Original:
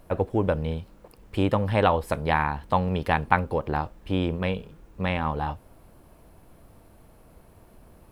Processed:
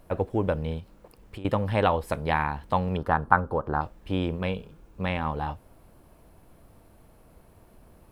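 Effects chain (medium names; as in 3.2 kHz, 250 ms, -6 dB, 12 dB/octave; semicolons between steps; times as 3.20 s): 0.79–1.45 s: compression 10:1, threshold -36 dBFS, peak gain reduction 18 dB; 2.97–3.81 s: resonant high shelf 1.8 kHz -8.5 dB, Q 3; 4.41–5.06 s: band-stop 1.9 kHz, Q 11; trim -2 dB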